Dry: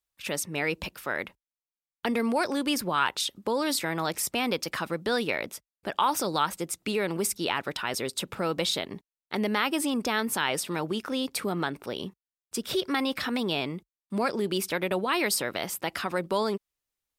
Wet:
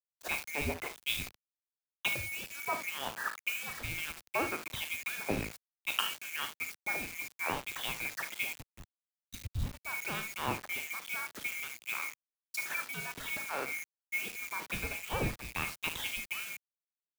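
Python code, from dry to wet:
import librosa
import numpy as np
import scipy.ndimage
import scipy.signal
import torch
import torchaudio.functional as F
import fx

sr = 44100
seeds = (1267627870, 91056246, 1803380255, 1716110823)

y = fx.band_swap(x, sr, width_hz=2000)
y = fx.env_lowpass_down(y, sr, base_hz=1300.0, full_db=-24.5)
y = fx.spec_box(y, sr, start_s=8.53, length_s=1.32, low_hz=290.0, high_hz=3600.0, gain_db=-16)
y = fx.dynamic_eq(y, sr, hz=1600.0, q=0.95, threshold_db=-45.0, ratio=4.0, max_db=4)
y = fx.room_early_taps(y, sr, ms=(37, 56, 75), db=(-11.0, -13.5, -11.0))
y = fx.rider(y, sr, range_db=4, speed_s=0.5)
y = fx.quant_dither(y, sr, seeds[0], bits=6, dither='none')
y = fx.high_shelf(y, sr, hz=11000.0, db=6.0)
y = fx.band_widen(y, sr, depth_pct=100)
y = y * 10.0 ** (-6.0 / 20.0)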